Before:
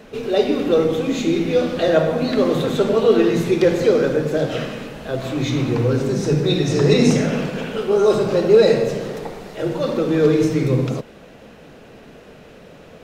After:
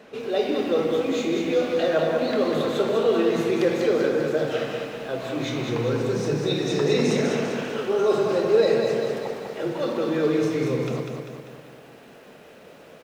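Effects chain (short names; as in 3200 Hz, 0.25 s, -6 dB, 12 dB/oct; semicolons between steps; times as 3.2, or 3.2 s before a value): HPF 320 Hz 6 dB/oct; high shelf 5000 Hz -6 dB; doubler 26 ms -12.5 dB; in parallel at -3 dB: limiter -14.5 dBFS, peak gain reduction 10.5 dB; on the sum: lo-fi delay 0.197 s, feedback 55%, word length 8-bit, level -5 dB; gain -7.5 dB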